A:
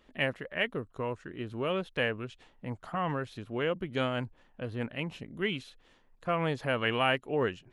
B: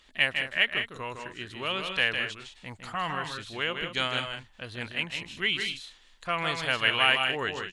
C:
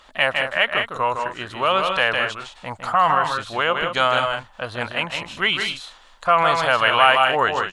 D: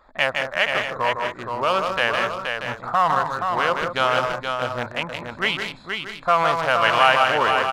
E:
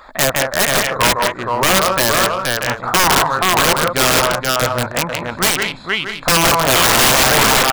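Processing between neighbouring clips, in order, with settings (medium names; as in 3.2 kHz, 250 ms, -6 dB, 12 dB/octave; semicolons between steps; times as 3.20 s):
graphic EQ 125/250/500/2000/4000/8000 Hz -7/-7/-7/+3/+9/+10 dB; on a send: loudspeakers at several distances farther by 54 m -6 dB, 67 m -11 dB; on the sum: trim +2 dB
high-order bell 870 Hz +11 dB; in parallel at +1 dB: peak limiter -15 dBFS, peak gain reduction 11 dB
local Wiener filter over 15 samples; delay 474 ms -5.5 dB; trim -1 dB
integer overflow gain 15 dB; tape noise reduction on one side only encoder only; trim +9 dB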